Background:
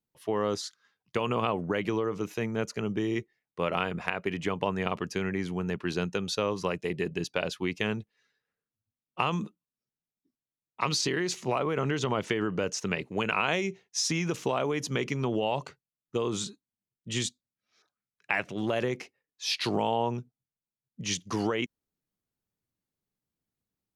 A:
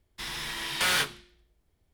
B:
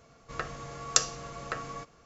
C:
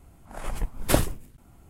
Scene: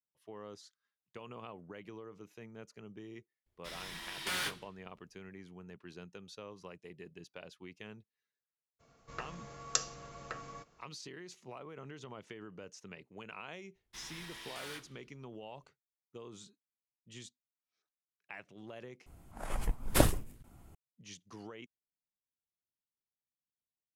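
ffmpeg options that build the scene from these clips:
-filter_complex "[1:a]asplit=2[s0][s1];[0:a]volume=0.106[s2];[s1]alimiter=level_in=1.19:limit=0.0631:level=0:latency=1:release=247,volume=0.841[s3];[s2]asplit=2[s4][s5];[s4]atrim=end=19.064[s6];[3:a]atrim=end=1.69,asetpts=PTS-STARTPTS,volume=0.631[s7];[s5]atrim=start=20.746[s8];[s0]atrim=end=1.93,asetpts=PTS-STARTPTS,volume=0.299,afade=t=in:d=0.004:c=hsin,afade=t=out:st=1.926:d=0.004:c=hsin,adelay=3460[s9];[2:a]atrim=end=2.05,asetpts=PTS-STARTPTS,volume=0.398,afade=t=in:d=0.02,afade=t=out:st=2.03:d=0.02,adelay=8790[s10];[s3]atrim=end=1.93,asetpts=PTS-STARTPTS,volume=0.224,afade=t=in:d=0.004:c=hsin,afade=t=out:st=1.926:d=0.004:c=hsin,adelay=13750[s11];[s6][s7]acrossfade=d=0.004:c1=hsin:c2=hsin[s12];[s12][s8]acrossfade=d=0.004:c1=hsin:c2=hsin[s13];[s13][s9][s10][s11]amix=inputs=4:normalize=0"

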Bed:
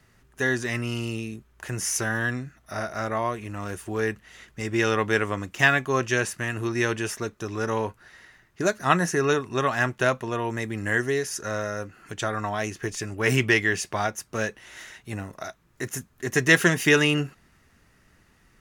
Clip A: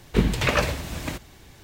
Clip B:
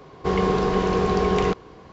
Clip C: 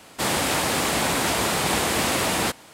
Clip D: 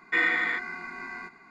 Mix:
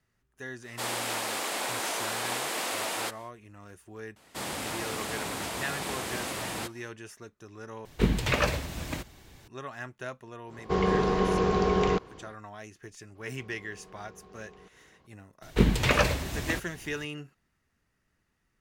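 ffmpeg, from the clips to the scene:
-filter_complex "[3:a]asplit=2[s0][s1];[1:a]asplit=2[s2][s3];[2:a]asplit=2[s4][s5];[0:a]volume=0.158[s6];[s0]highpass=390[s7];[s5]acompressor=threshold=0.0224:ratio=6:attack=3.2:release=140:knee=1:detection=peak[s8];[s6]asplit=2[s9][s10];[s9]atrim=end=7.854[s11];[s2]atrim=end=1.63,asetpts=PTS-STARTPTS,volume=0.631[s12];[s10]atrim=start=9.476[s13];[s7]atrim=end=2.73,asetpts=PTS-STARTPTS,volume=0.376,afade=t=in:d=0.1,afade=t=out:st=2.63:d=0.1,adelay=590[s14];[s1]atrim=end=2.73,asetpts=PTS-STARTPTS,volume=0.251,afade=t=in:d=0.004:c=hsin,afade=t=out:st=2.726:d=0.004:c=hsin,adelay=4160[s15];[s4]atrim=end=1.92,asetpts=PTS-STARTPTS,volume=0.631,afade=t=in:d=0.1,afade=t=out:st=1.82:d=0.1,adelay=10450[s16];[s8]atrim=end=1.92,asetpts=PTS-STARTPTS,volume=0.133,afade=t=in:d=0.004:c=hsin,afade=t=out:st=1.916:d=0.004:c=hsin,adelay=13150[s17];[s3]atrim=end=1.63,asetpts=PTS-STARTPTS,volume=0.841,afade=t=in:d=0.004:c=hsin,afade=t=out:st=1.626:d=0.004:c=hsin,adelay=15420[s18];[s11][s12]acrossfade=d=0.004:c1=hsin:c2=hsin[s19];[s19][s13]acrossfade=d=0.004:c1=hsin:c2=hsin[s20];[s20][s14][s15][s16][s17][s18]amix=inputs=6:normalize=0"

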